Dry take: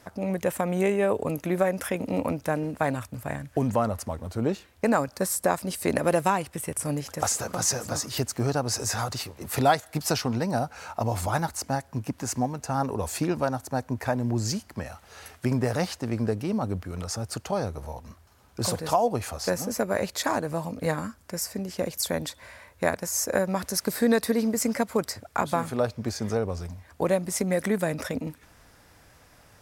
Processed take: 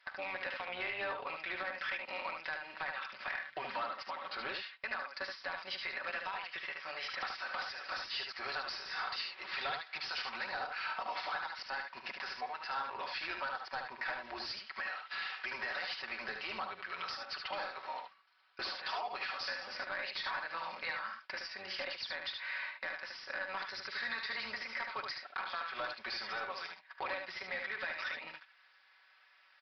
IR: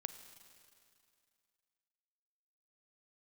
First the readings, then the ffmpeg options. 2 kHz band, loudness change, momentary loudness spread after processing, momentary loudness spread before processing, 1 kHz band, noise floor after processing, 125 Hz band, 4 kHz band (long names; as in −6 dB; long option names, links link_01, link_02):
−1.5 dB, −11.5 dB, 4 LU, 8 LU, −10.0 dB, −65 dBFS, −35.5 dB, −4.0 dB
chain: -af "highpass=1300,agate=range=-21dB:threshold=-53dB:ratio=16:detection=peak,equalizer=frequency=1900:width=0.44:gain=9.5,aecho=1:1:5.3:0.86,alimiter=limit=-13dB:level=0:latency=1:release=254,acompressor=threshold=-44dB:ratio=3,aresample=16000,asoftclip=type=tanh:threshold=-37.5dB,aresample=44100,tremolo=f=290:d=0.462,aecho=1:1:44|74:0.133|0.562,aresample=11025,aresample=44100,volume=7.5dB"